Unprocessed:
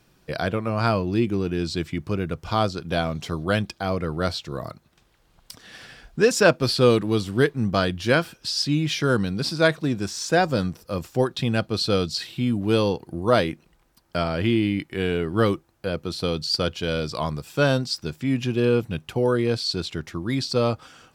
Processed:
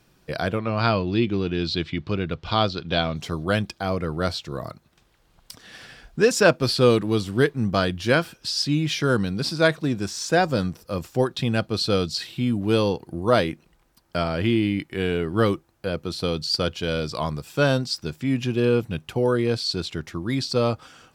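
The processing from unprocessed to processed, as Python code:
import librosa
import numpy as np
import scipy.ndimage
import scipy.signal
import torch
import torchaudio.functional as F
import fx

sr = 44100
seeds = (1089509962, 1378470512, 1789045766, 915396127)

y = fx.lowpass_res(x, sr, hz=3800.0, q=2.4, at=(0.59, 3.16))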